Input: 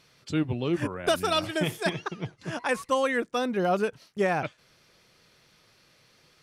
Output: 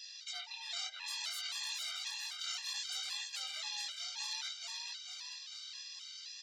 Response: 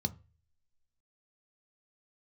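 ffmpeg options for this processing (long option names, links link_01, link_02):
-filter_complex "[0:a]afftfilt=real='real(if(between(b,1,1008),(2*floor((b-1)/48)+1)*48-b,b),0)':imag='imag(if(between(b,1,1008),(2*floor((b-1)/48)+1)*48-b,b),0)*if(between(b,1,1008),-1,1)':win_size=2048:overlap=0.75,aderivative,aresample=16000,aresample=44100,acrossover=split=3900[link_01][link_02];[link_01]asoftclip=type=tanh:threshold=-40dB[link_03];[link_02]acompressor=threshold=-56dB:ratio=10[link_04];[link_03][link_04]amix=inputs=2:normalize=0,highpass=frequency=1400:width=0.5412,highpass=frequency=1400:width=1.3066,asoftclip=type=hard:threshold=-35dB,afftfilt=real='re*lt(hypot(re,im),0.00447)':imag='im*lt(hypot(re,im),0.00447)':win_size=1024:overlap=0.75,asplit=2[link_05][link_06];[link_06]asplit=8[link_07][link_08][link_09][link_10][link_11][link_12][link_13][link_14];[link_07]adelay=438,afreqshift=57,volume=-4dB[link_15];[link_08]adelay=876,afreqshift=114,volume=-8.7dB[link_16];[link_09]adelay=1314,afreqshift=171,volume=-13.5dB[link_17];[link_10]adelay=1752,afreqshift=228,volume=-18.2dB[link_18];[link_11]adelay=2190,afreqshift=285,volume=-22.9dB[link_19];[link_12]adelay=2628,afreqshift=342,volume=-27.7dB[link_20];[link_13]adelay=3066,afreqshift=399,volume=-32.4dB[link_21];[link_14]adelay=3504,afreqshift=456,volume=-37.1dB[link_22];[link_15][link_16][link_17][link_18][link_19][link_20][link_21][link_22]amix=inputs=8:normalize=0[link_23];[link_05][link_23]amix=inputs=2:normalize=0,flanger=delay=18:depth=7.7:speed=0.61,equalizer=frequency=3900:width=1.5:gain=10,afftfilt=real='re*gt(sin(2*PI*1.9*pts/sr)*(1-2*mod(floor(b*sr/1024/400),2)),0)':imag='im*gt(sin(2*PI*1.9*pts/sr)*(1-2*mod(floor(b*sr/1024/400),2)),0)':win_size=1024:overlap=0.75,volume=17.5dB"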